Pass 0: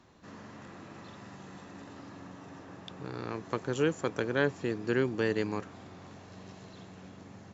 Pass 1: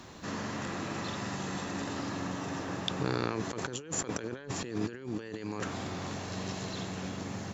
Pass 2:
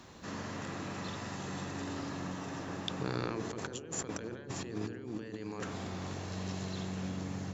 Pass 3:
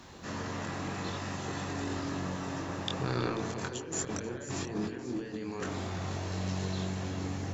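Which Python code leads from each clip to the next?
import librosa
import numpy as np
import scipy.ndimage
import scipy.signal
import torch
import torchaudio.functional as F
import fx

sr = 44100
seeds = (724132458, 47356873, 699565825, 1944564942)

y1 = fx.high_shelf(x, sr, hz=3500.0, db=7.5)
y1 = fx.over_compress(y1, sr, threshold_db=-41.0, ratio=-1.0)
y1 = y1 * 10.0 ** (5.0 / 20.0)
y2 = fx.echo_wet_lowpass(y1, sr, ms=64, feedback_pct=75, hz=520.0, wet_db=-8.0)
y2 = y2 * 10.0 ** (-4.5 / 20.0)
y3 = fx.chorus_voices(y2, sr, voices=4, hz=0.81, base_ms=23, depth_ms=1.7, mix_pct=40)
y3 = fx.echo_stepped(y3, sr, ms=162, hz=780.0, octaves=1.4, feedback_pct=70, wet_db=-6)
y3 = y3 * 10.0 ** (6.0 / 20.0)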